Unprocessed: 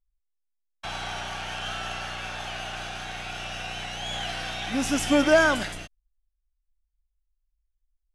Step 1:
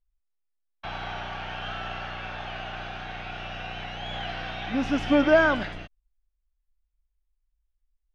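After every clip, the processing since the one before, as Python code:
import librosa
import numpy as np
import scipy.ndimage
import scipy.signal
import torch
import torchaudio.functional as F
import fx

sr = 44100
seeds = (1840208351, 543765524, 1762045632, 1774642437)

y = fx.air_absorb(x, sr, metres=270.0)
y = y * librosa.db_to_amplitude(1.0)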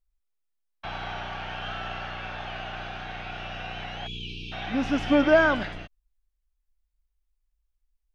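y = fx.spec_erase(x, sr, start_s=4.07, length_s=0.45, low_hz=460.0, high_hz=2300.0)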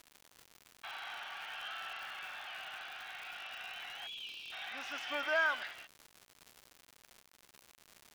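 y = scipy.signal.sosfilt(scipy.signal.butter(2, 1200.0, 'highpass', fs=sr, output='sos'), x)
y = fx.dmg_crackle(y, sr, seeds[0], per_s=190.0, level_db=-36.0)
y = y * librosa.db_to_amplitude(-6.0)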